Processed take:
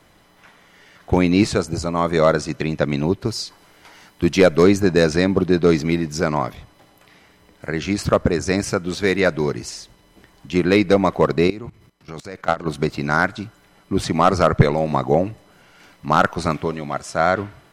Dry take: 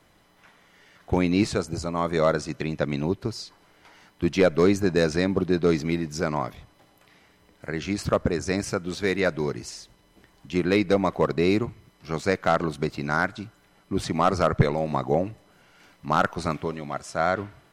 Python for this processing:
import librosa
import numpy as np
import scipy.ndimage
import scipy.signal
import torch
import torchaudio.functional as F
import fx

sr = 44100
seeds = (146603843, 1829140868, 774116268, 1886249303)

y = fx.high_shelf(x, sr, hz=fx.line((3.25, 4100.0), (4.62, 6300.0)), db=6.0, at=(3.25, 4.62), fade=0.02)
y = fx.level_steps(y, sr, step_db=19, at=(11.47, 12.65), fade=0.02)
y = y * 10.0 ** (6.0 / 20.0)